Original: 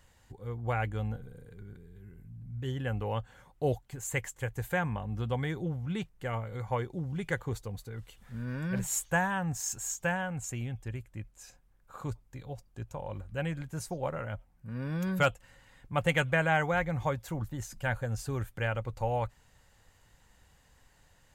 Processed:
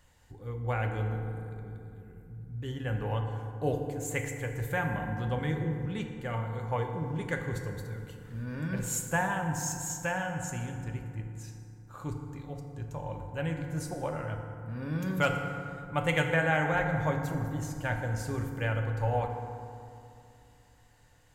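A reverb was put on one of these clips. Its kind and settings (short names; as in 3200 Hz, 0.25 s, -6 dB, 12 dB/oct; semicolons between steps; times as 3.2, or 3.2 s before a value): FDN reverb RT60 2.6 s, low-frequency decay 1.2×, high-frequency decay 0.45×, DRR 3 dB; gain -1.5 dB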